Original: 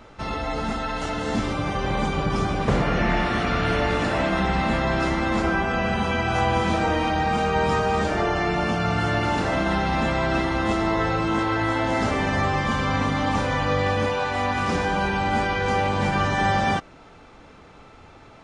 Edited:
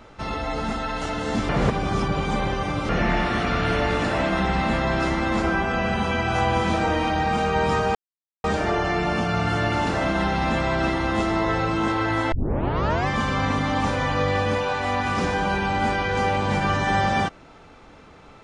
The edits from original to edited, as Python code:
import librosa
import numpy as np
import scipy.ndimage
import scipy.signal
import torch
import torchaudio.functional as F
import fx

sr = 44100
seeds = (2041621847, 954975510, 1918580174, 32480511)

y = fx.edit(x, sr, fx.reverse_span(start_s=1.49, length_s=1.4),
    fx.insert_silence(at_s=7.95, length_s=0.49),
    fx.tape_start(start_s=11.83, length_s=0.75), tone=tone)